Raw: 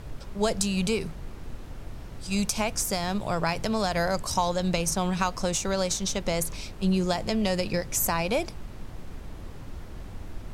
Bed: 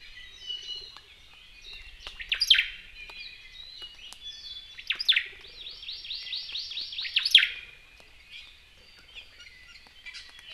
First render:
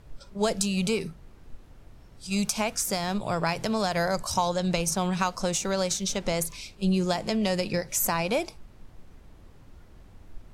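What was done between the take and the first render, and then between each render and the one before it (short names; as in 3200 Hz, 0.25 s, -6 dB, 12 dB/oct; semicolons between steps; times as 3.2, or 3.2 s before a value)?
noise print and reduce 11 dB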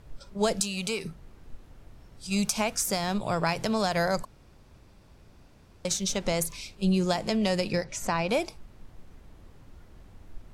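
0.6–1.05 low shelf 480 Hz -9.5 dB; 4.25–5.85 room tone; 7.84–8.29 air absorption 98 m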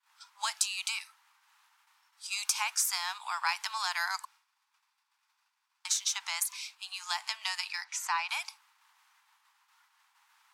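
expander -45 dBFS; steep high-pass 860 Hz 72 dB/oct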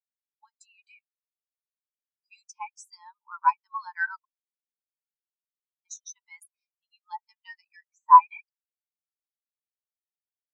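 AGC gain up to 11 dB; spectral expander 4:1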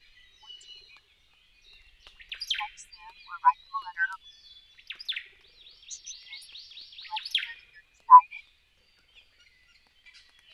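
add bed -11 dB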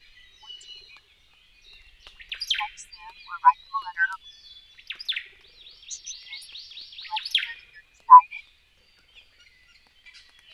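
gain +4.5 dB; limiter -1 dBFS, peak gain reduction 2.5 dB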